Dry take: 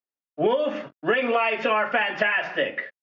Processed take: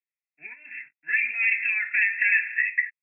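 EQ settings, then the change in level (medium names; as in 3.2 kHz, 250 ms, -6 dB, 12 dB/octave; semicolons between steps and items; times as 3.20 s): elliptic high-pass 1.9 kHz, stop band 40 dB; brick-wall FIR low-pass 2.7 kHz; +8.0 dB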